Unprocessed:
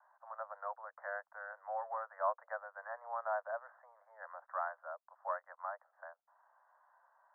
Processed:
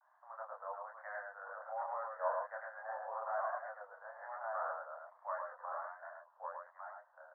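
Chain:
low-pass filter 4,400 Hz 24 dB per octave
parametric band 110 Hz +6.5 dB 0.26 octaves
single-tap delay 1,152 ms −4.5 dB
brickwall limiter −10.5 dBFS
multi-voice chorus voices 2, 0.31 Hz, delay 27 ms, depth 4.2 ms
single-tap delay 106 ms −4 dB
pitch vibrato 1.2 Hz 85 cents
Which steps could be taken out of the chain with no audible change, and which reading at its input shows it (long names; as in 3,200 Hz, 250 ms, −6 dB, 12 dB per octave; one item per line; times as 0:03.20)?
low-pass filter 4,400 Hz: nothing at its input above 1,900 Hz
parametric band 110 Hz: nothing at its input below 450 Hz
brickwall limiter −10.5 dBFS: peak of its input −22.5 dBFS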